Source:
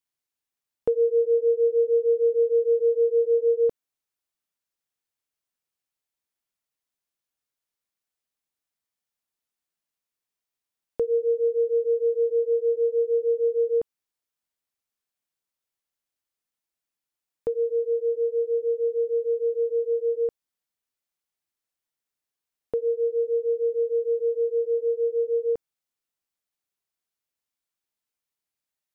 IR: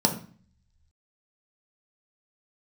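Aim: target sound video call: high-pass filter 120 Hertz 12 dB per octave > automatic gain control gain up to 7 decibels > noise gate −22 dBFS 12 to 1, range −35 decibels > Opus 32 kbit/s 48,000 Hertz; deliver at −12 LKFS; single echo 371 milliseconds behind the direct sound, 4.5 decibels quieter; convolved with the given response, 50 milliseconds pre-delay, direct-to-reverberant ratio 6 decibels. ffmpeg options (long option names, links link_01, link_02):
-filter_complex "[0:a]aecho=1:1:371:0.596,asplit=2[link_01][link_02];[1:a]atrim=start_sample=2205,adelay=50[link_03];[link_02][link_03]afir=irnorm=-1:irlink=0,volume=-18.5dB[link_04];[link_01][link_04]amix=inputs=2:normalize=0,highpass=120,dynaudnorm=maxgain=7dB,agate=range=-35dB:threshold=-22dB:ratio=12,volume=3dB" -ar 48000 -c:a libopus -b:a 32k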